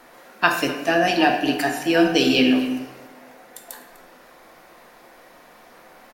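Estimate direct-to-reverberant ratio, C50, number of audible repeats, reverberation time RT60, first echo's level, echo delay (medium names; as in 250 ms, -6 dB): 3.0 dB, 6.0 dB, 1, 1.1 s, -18.5 dB, 250 ms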